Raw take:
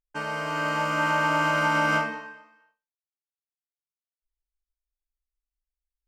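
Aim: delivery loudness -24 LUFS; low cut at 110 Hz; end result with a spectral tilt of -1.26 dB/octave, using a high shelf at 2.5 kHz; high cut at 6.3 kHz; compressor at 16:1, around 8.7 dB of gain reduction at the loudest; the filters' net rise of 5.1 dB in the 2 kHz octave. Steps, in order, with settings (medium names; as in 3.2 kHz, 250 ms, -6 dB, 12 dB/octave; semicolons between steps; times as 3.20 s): high-pass 110 Hz; low-pass 6.3 kHz; peaking EQ 2 kHz +6 dB; treble shelf 2.5 kHz +3.5 dB; compression 16:1, threshold -25 dBFS; trim +4.5 dB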